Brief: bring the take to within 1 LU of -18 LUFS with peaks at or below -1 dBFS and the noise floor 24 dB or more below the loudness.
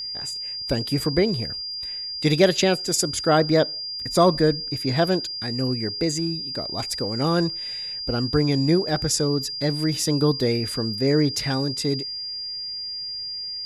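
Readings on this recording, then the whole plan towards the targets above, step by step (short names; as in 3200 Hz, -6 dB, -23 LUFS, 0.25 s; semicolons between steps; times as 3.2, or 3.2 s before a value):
steady tone 4800 Hz; tone level -29 dBFS; loudness -23.0 LUFS; peak -4.5 dBFS; loudness target -18.0 LUFS
-> notch 4800 Hz, Q 30; gain +5 dB; limiter -1 dBFS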